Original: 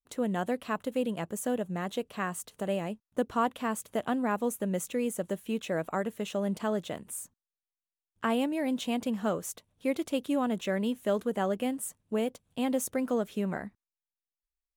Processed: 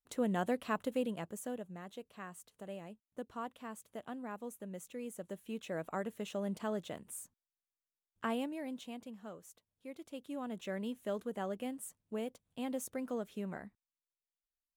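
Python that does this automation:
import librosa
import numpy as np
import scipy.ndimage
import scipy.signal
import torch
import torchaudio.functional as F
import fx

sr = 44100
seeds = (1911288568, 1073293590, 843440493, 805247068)

y = fx.gain(x, sr, db=fx.line((0.85, -3.0), (1.84, -14.5), (4.8, -14.5), (5.97, -7.0), (8.27, -7.0), (9.19, -18.5), (9.88, -18.5), (10.71, -9.5)))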